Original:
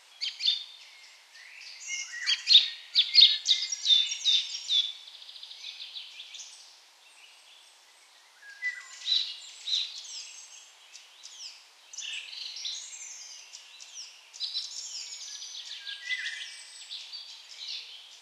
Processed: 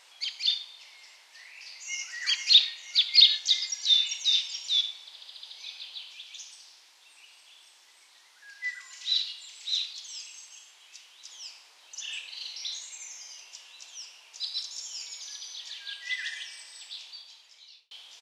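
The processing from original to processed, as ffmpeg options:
-filter_complex "[0:a]asplit=2[s0][s1];[s1]afade=t=in:st=1.52:d=0.01,afade=t=out:st=2.06:d=0.01,aecho=0:1:480|960|1440|1920|2400|2880:0.595662|0.268048|0.120622|0.0542797|0.0244259|0.0109916[s2];[s0][s2]amix=inputs=2:normalize=0,asettb=1/sr,asplit=3[s3][s4][s5];[s3]atrim=end=6.134[s6];[s4]atrim=start=6.13:end=11.29,asetpts=PTS-STARTPTS,afade=t=in:d=0.004:c=qsin,afade=t=out:st=5.156:d=0.004:c=qsin,equalizer=f=630:t=o:w=1.7:g=-5.5[s7];[s5]atrim=start=11.286[s8];[s6][s7]acrossfade=d=0.004:c1=hsin:c2=qsin[s9];[s9][s8]acrossfade=d=0.004:c1=qsin:c2=hsin,asplit=2[s10][s11];[s10]atrim=end=17.91,asetpts=PTS-STARTPTS,afade=t=out:st=16.81:d=1.1[s12];[s11]atrim=start=17.91,asetpts=PTS-STARTPTS,afade=t=in:d=0.004:c=hsin[s13];[s12][s13]concat=n=2:v=0:a=1"

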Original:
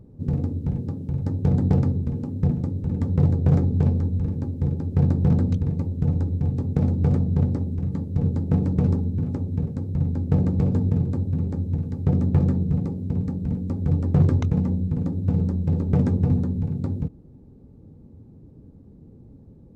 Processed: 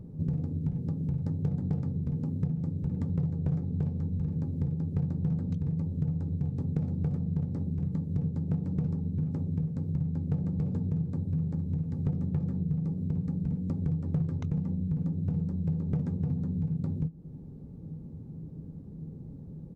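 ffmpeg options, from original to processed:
-filter_complex "[0:a]asplit=2[s0][s1];[s1]afade=t=in:st=10.87:d=0.01,afade=t=out:st=11.35:d=0.01,aecho=0:1:460|920|1380|1840|2300|2760:0.237137|0.130426|0.0717341|0.0394537|0.0216996|0.0119348[s2];[s0][s2]amix=inputs=2:normalize=0,equalizer=f=160:w=4.1:g=12,acompressor=threshold=0.0398:ratio=6"

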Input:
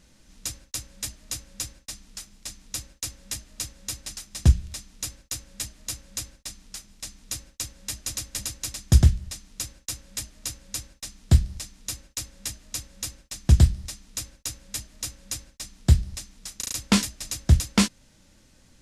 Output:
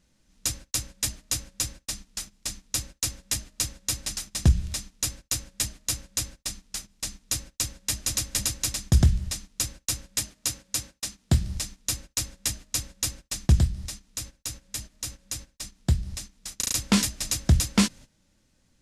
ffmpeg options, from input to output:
-filter_complex "[0:a]asettb=1/sr,asplit=3[s0][s1][s2];[s0]atrim=end=10.194[s3];[s1]atrim=start=10.19:end=11.47,asetpts=PTS-STARTPTS,afade=t=in:d=0.004:c=qsin,afade=t=out:st=1.276:d=0.004:c=qsin,highpass=f=110:p=1[s4];[s2]atrim=start=11.466[s5];[s3][s4]acrossfade=d=0.004:c1=hsin:c2=qsin[s6];[s6][s5]acrossfade=d=0.004:c1=qsin:c2=hsin,asettb=1/sr,asplit=3[s7][s8][s9];[s7]atrim=end=13.594[s10];[s8]atrim=start=13.59:end=16.53,asetpts=PTS-STARTPTS,afade=t=in:d=0.004:c=qsin,afade=t=out:st=2.936:d=0.004:c=qsin,acompressor=threshold=0.00708:ratio=1.5:attack=3.2:release=140:knee=1:detection=peak[s11];[s9]atrim=start=16.526[s12];[s10][s11]acrossfade=d=0.004:c1=hsin:c2=qsin[s13];[s13][s12]acrossfade=d=0.004:c1=qsin:c2=hsin,agate=range=0.178:threshold=0.00631:ratio=16:detection=peak,equalizer=f=160:w=1.2:g=2,alimiter=limit=0.178:level=0:latency=1:release=94,volume=1.78"

